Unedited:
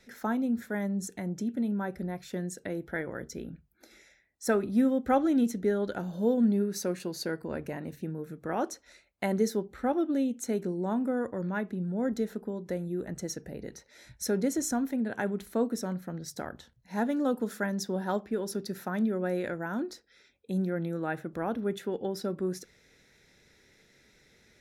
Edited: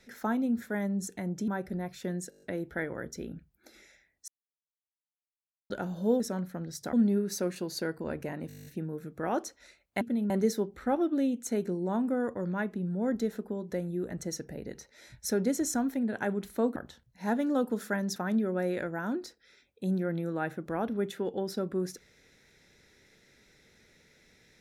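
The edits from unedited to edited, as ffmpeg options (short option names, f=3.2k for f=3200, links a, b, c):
-filter_complex "[0:a]asplit=25[a][b][c][d][e][f][g][h][i][j][k][l][m][n][o][p][q][r][s][t][u][v][w][x][y];[a]atrim=end=1.482[z];[b]atrim=start=1.768:end=2.612[aa];[c]atrim=start=2.588:end=2.612[ab];[d]atrim=start=2.588:end=2.612[ac];[e]atrim=start=2.588:end=2.612[ad];[f]atrim=start=2.588:end=2.612[ae];[g]atrim=start=2.588:end=2.612[af];[h]atrim=start=2.588:end=4.45,asetpts=PTS-STARTPTS,afade=t=out:st=1.858:d=0.004:c=hsin[ag];[i]atrim=start=4.45:end=5.87,asetpts=PTS-STARTPTS,volume=0[ah];[j]atrim=start=5.87:end=6.372,asetpts=PTS-STARTPTS,afade=t=in:d=0.004:c=hsin[ai];[k]atrim=start=15.728:end=16.462[aj];[l]atrim=start=6.368:end=7.942[ak];[m]atrim=start=7.918:end=7.942[al];[n]atrim=start=7.918:end=7.942[am];[o]atrim=start=7.918:end=7.942[an];[p]atrim=start=7.918:end=7.942[ao];[q]atrim=start=7.918:end=7.942[ap];[r]atrim=start=7.918:end=7.942[aq];[s]atrim=start=7.918:end=7.942[ar];[t]atrim=start=7.918:end=7.942[as];[u]atrim=start=7.918:end=9.272[at];[v]atrim=start=1.478:end=1.772[au];[w]atrim=start=9.268:end=15.732[av];[x]atrim=start=16.458:end=17.862[aw];[y]atrim=start=18.828[ax];[z][aa]acrossfade=d=0.004:c1=hsin:c2=hsin[ay];[ay][ab]acrossfade=d=0.004:c1=hsin:c2=hsin[az];[az][ac]acrossfade=d=0.004:c1=hsin:c2=hsin[ba];[ba][ad]acrossfade=d=0.004:c1=hsin:c2=hsin[bb];[bb][ae]acrossfade=d=0.004:c1=hsin:c2=hsin[bc];[bc][af]acrossfade=d=0.004:c1=hsin:c2=hsin[bd];[ag][ah][ai]concat=n=3:v=0:a=1[be];[bd][be]acrossfade=d=0.004:c1=hsin:c2=hsin[bf];[bf][aj]acrossfade=d=0.004:c1=hsin:c2=hsin[bg];[bg][ak]acrossfade=d=0.004:c1=hsin:c2=hsin[bh];[bh][al]acrossfade=d=0.004:c1=hsin:c2=hsin[bi];[bi][am]acrossfade=d=0.004:c1=hsin:c2=hsin[bj];[bj][an]acrossfade=d=0.004:c1=hsin:c2=hsin[bk];[bk][ao]acrossfade=d=0.004:c1=hsin:c2=hsin[bl];[bl][ap]acrossfade=d=0.004:c1=hsin:c2=hsin[bm];[bm][aq]acrossfade=d=0.004:c1=hsin:c2=hsin[bn];[bn][ar]acrossfade=d=0.004:c1=hsin:c2=hsin[bo];[bo][as]acrossfade=d=0.004:c1=hsin:c2=hsin[bp];[bp][at]acrossfade=d=0.004:c1=hsin:c2=hsin[bq];[bq][au]acrossfade=d=0.004:c1=hsin:c2=hsin[br];[br][av]acrossfade=d=0.004:c1=hsin:c2=hsin[bs];[bs][aw]acrossfade=d=0.004:c1=hsin:c2=hsin[bt];[bt][ax]acrossfade=d=0.004:c1=hsin:c2=hsin"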